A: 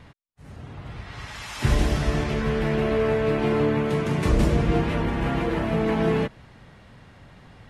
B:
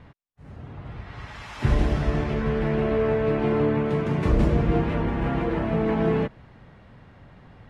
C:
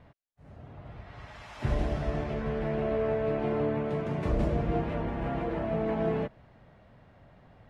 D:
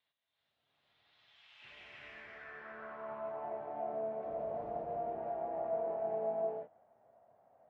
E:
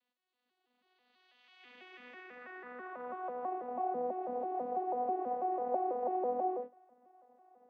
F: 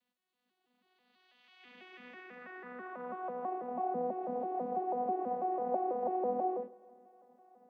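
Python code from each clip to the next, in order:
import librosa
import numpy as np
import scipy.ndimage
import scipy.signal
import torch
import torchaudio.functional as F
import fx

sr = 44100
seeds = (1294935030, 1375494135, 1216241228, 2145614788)

y1 = fx.lowpass(x, sr, hz=1800.0, slope=6)
y2 = fx.peak_eq(y1, sr, hz=640.0, db=7.5, octaves=0.48)
y2 = y2 * 10.0 ** (-8.0 / 20.0)
y3 = fx.filter_sweep_bandpass(y2, sr, from_hz=3700.0, to_hz=680.0, start_s=1.2, end_s=3.54, q=4.3)
y3 = fx.rev_gated(y3, sr, seeds[0], gate_ms=420, shape='rising', drr_db=-4.0)
y3 = y3 * 10.0 ** (-5.5 / 20.0)
y4 = fx.vocoder_arp(y3, sr, chord='bare fifth', root=59, every_ms=164)
y4 = y4 * 10.0 ** (3.0 / 20.0)
y5 = fx.peak_eq(y4, sr, hz=190.0, db=12.0, octaves=0.55)
y5 = fx.echo_bbd(y5, sr, ms=140, stages=1024, feedback_pct=66, wet_db=-23.5)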